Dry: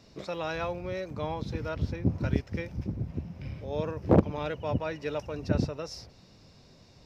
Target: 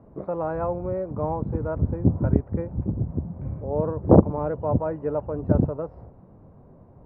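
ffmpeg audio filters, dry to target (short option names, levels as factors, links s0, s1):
-af "lowpass=f=1100:w=0.5412,lowpass=f=1100:w=1.3066,volume=2.24"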